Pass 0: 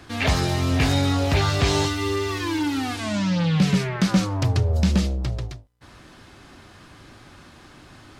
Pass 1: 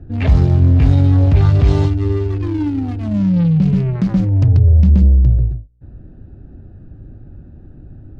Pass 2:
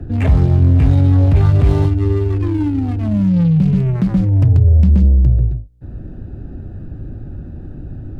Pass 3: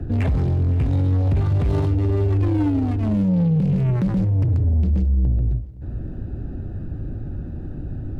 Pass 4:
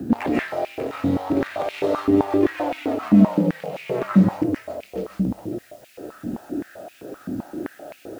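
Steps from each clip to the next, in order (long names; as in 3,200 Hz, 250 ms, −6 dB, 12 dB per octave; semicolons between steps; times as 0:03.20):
adaptive Wiener filter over 41 samples; in parallel at −0.5 dB: compressor whose output falls as the input rises −22 dBFS, ratio −0.5; on the sum: RIAA equalisation playback; level −6 dB
running median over 9 samples; multiband upward and downward compressor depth 40%
brickwall limiter −10 dBFS, peak gain reduction 8 dB; soft clipping −14 dBFS, distortion −16 dB; echo machine with several playback heads 172 ms, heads first and third, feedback 53%, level −22.5 dB
bit-depth reduction 10 bits, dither triangular; convolution reverb RT60 0.35 s, pre-delay 105 ms, DRR −3 dB; high-pass on a step sequencer 7.7 Hz 230–2,400 Hz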